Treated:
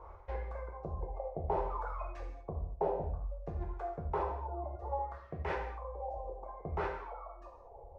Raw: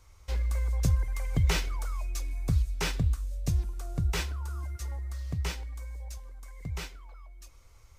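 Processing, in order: reverse; compressor 16:1, threshold -38 dBFS, peak gain reduction 19.5 dB; reverse; LFO low-pass sine 0.6 Hz 690–1800 Hz; reverb removal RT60 1.8 s; in parallel at -10 dB: one-sided clip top -40 dBFS; on the sum: band shelf 580 Hz +14 dB; flutter echo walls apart 10.7 m, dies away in 0.28 s; non-linear reverb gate 0.26 s falling, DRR 0 dB; gain -1.5 dB

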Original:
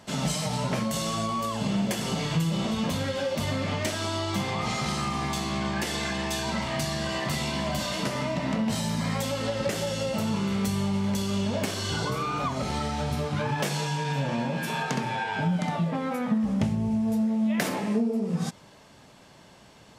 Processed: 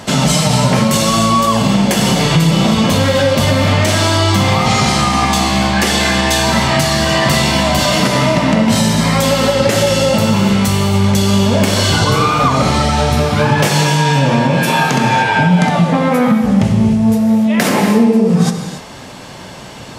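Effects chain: compressor 1.5:1, threshold -36 dBFS, peak gain reduction 6 dB; non-linear reverb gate 0.32 s flat, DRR 5 dB; maximiser +20.5 dB; gain -1 dB

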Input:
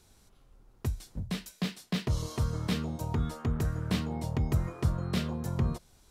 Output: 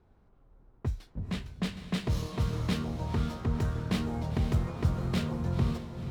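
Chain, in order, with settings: low-pass opened by the level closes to 1200 Hz, open at -24 dBFS; diffused feedback echo 0.497 s, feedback 45%, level -8 dB; running maximum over 3 samples

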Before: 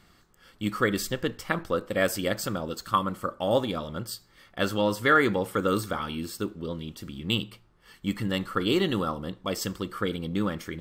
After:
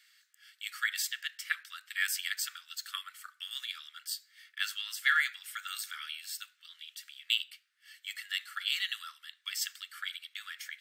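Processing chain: steep high-pass 1600 Hz 48 dB/oct

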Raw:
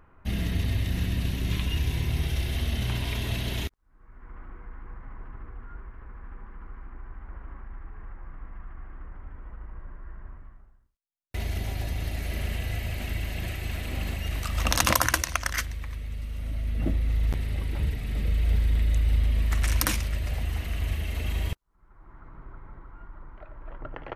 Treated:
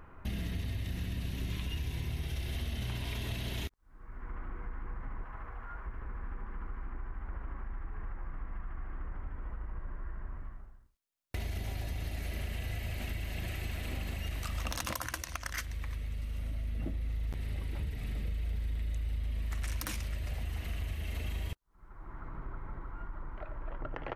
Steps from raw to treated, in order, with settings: 5.24–5.86 resonant low shelf 470 Hz -7 dB, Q 1.5; compressor 4:1, threshold -39 dBFS, peak gain reduction 19 dB; soft clip -25.5 dBFS, distortion -28 dB; gain +4 dB

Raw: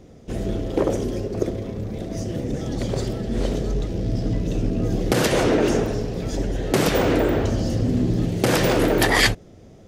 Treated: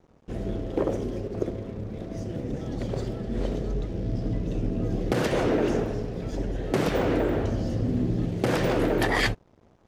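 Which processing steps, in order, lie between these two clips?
high shelf 4100 Hz -11 dB; crossover distortion -46.5 dBFS; gain -4.5 dB

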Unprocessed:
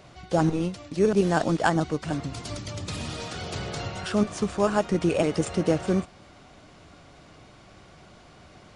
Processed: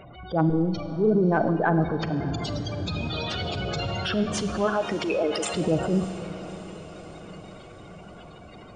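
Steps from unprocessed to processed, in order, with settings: 4.64–5.53 HPF 250 Hz -> 580 Hz 12 dB/oct; spectral gate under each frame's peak -15 dB strong; bell 3300 Hz +9 dB 0.94 oct; in parallel at -2 dB: compressor, threshold -31 dBFS, peak gain reduction 14 dB; on the sum: transient shaper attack -8 dB, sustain +4 dB; diffused feedback echo 0.619 s, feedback 61%, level -15.5 dB; Schroeder reverb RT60 2 s, combs from 33 ms, DRR 10 dB

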